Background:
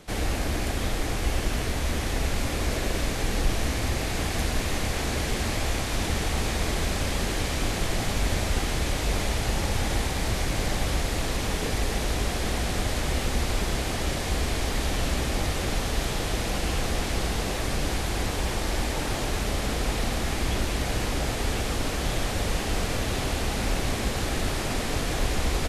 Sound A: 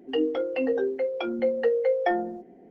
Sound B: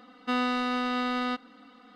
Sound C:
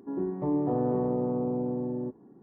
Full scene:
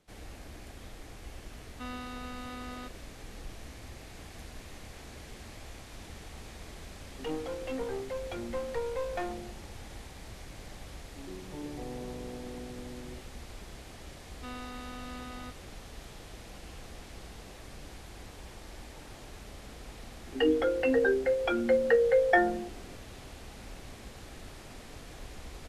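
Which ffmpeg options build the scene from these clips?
-filter_complex "[2:a]asplit=2[a][b];[1:a]asplit=2[c][d];[0:a]volume=-19.5dB[e];[c]aeval=exprs='clip(val(0),-1,0.0355)':c=same[f];[d]equalizer=f=1.6k:w=3.4:g=12.5[g];[a]atrim=end=1.95,asetpts=PTS-STARTPTS,volume=-14dB,afade=t=in:d=0.004:c=hsin,afade=t=out:st=1.946:d=0.004:c=hsin,adelay=1520[h];[f]atrim=end=2.7,asetpts=PTS-STARTPTS,volume=-8.5dB,afade=t=in:d=0.004:c=hsin,afade=t=out:st=2.696:d=0.004:c=hsin,adelay=7110[i];[3:a]atrim=end=2.42,asetpts=PTS-STARTPTS,volume=-14dB,afade=t=in:d=0.004:c=hsin,afade=t=out:st=2.416:d=0.004:c=hsin,adelay=11100[j];[b]atrim=end=1.95,asetpts=PTS-STARTPTS,volume=-15.5dB,afade=t=in:d=0.004:c=hsin,afade=t=out:st=1.946:d=0.004:c=hsin,adelay=14150[k];[g]atrim=end=2.7,asetpts=PTS-STARTPTS,volume=-0.5dB,afade=t=in:d=0.004:c=hsin,afade=t=out:st=2.696:d=0.004:c=hsin,adelay=20270[l];[e][h][i][j][k][l]amix=inputs=6:normalize=0"

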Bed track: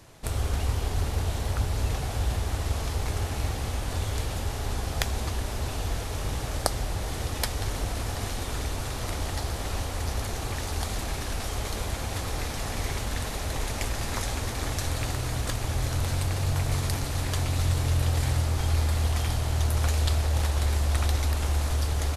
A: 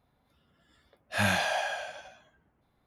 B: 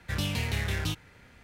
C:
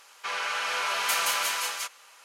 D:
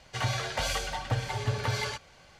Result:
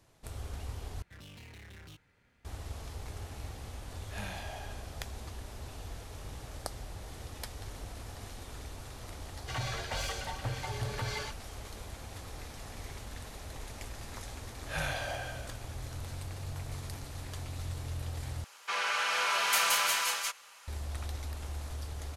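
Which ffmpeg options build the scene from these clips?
-filter_complex "[1:a]asplit=2[a][b];[0:a]volume=-13.5dB[c];[2:a]asoftclip=type=tanh:threshold=-33dB[d];[a]equalizer=f=1.5k:t=o:w=0.27:g=-5[e];[4:a]aeval=exprs='0.141*sin(PI/2*1.58*val(0)/0.141)':c=same[f];[b]afreqshift=-49[g];[3:a]asubboost=boost=3.5:cutoff=180[h];[c]asplit=3[i][j][k];[i]atrim=end=1.024[l];[d]atrim=end=1.43,asetpts=PTS-STARTPTS,volume=-14.5dB[m];[j]atrim=start=2.446:end=18.444[n];[h]atrim=end=2.24,asetpts=PTS-STARTPTS,volume=-1dB[o];[k]atrim=start=20.676[p];[e]atrim=end=2.86,asetpts=PTS-STARTPTS,volume=-15dB,afade=t=in:d=0.004:c=hsin,afade=t=out:st=2.856:d=0.004:c=hsin,adelay=2980[q];[f]atrim=end=2.39,asetpts=PTS-STARTPTS,volume=-12.5dB,afade=t=in:d=0.004:c=hsin,afade=t=out:st=2.386:d=0.004:c=hsin,adelay=9340[r];[g]atrim=end=2.86,asetpts=PTS-STARTPTS,volume=-8.5dB,afade=t=in:d=0.004:c=hsin,afade=t=out:st=2.856:d=0.004:c=hsin,adelay=13560[s];[l][m]acrossfade=d=0.004:c1=hsin:c2=hsin[t];[t][n]acrossfade=d=0.004:c1=hsin:c2=hsin[u];[u][o]acrossfade=d=0.004:c1=hsin:c2=hsin[v];[v][p]acrossfade=d=0.004:c1=hsin:c2=hsin[w];[w][q][r][s]amix=inputs=4:normalize=0"

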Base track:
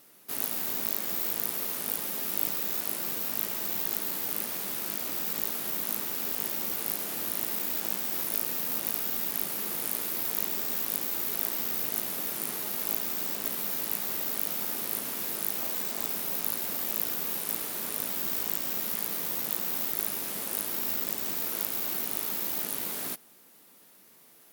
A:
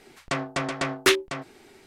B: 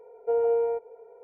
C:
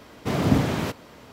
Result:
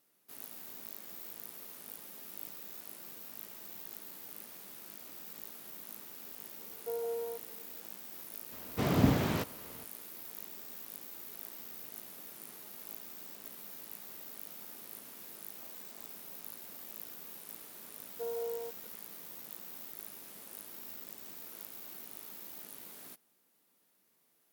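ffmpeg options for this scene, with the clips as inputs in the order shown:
-filter_complex "[2:a]asplit=2[a][b];[0:a]volume=-16dB[c];[b]acrusher=bits=6:mix=0:aa=0.000001[d];[a]atrim=end=1.23,asetpts=PTS-STARTPTS,volume=-13dB,afade=t=in:d=0.004:c=hsin,afade=t=out:st=1.226:d=0.004:c=hsin,adelay=6590[e];[3:a]atrim=end=1.32,asetpts=PTS-STARTPTS,volume=-6dB,afade=t=in:d=0.004:c=hsin,afade=t=out:st=1.316:d=0.004:c=hsin,adelay=8520[f];[d]atrim=end=1.23,asetpts=PTS-STARTPTS,volume=-14dB,afade=t=in:d=0.004:c=hsin,afade=t=out:st=1.226:d=0.004:c=hsin,adelay=17920[g];[c][e][f][g]amix=inputs=4:normalize=0"

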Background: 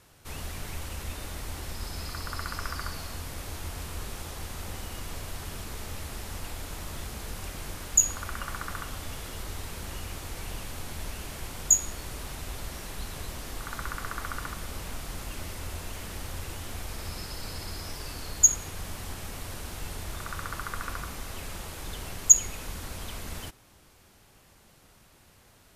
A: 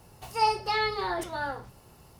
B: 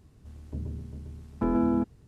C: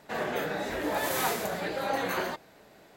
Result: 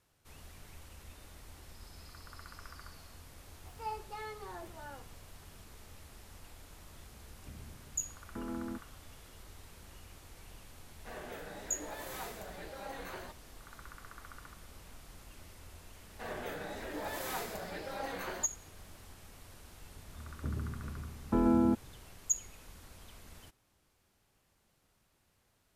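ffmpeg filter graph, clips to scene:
-filter_complex "[2:a]asplit=2[a][b];[3:a]asplit=2[c][d];[0:a]volume=-15.5dB[e];[1:a]equalizer=f=7.2k:w=0.46:g=-13.5,atrim=end=2.19,asetpts=PTS-STARTPTS,volume=-14.5dB,afade=t=in:d=0.004:c=hsin,afade=t=out:st=2.186:d=0.004:c=hsin,adelay=3440[f];[a]atrim=end=2.07,asetpts=PTS-STARTPTS,volume=-15.5dB,afade=t=in:d=0.004:c=hsin,afade=t=out:st=2.066:d=0.004:c=hsin,adelay=6940[g];[c]atrim=end=2.96,asetpts=PTS-STARTPTS,volume=-14.5dB,afade=t=in:d=0.004:c=hsin,afade=t=out:st=2.956:d=0.004:c=hsin,adelay=10960[h];[d]atrim=end=2.96,asetpts=PTS-STARTPTS,volume=-10dB,afade=t=in:d=0.004:c=hsin,afade=t=out:st=2.956:d=0.004:c=hsin,adelay=16100[i];[b]atrim=end=2.07,asetpts=PTS-STARTPTS,volume=-2dB,afade=t=in:d=0.004:c=hsin,afade=t=out:st=2.066:d=0.004:c=hsin,adelay=19910[j];[e][f][g][h][i][j]amix=inputs=6:normalize=0"

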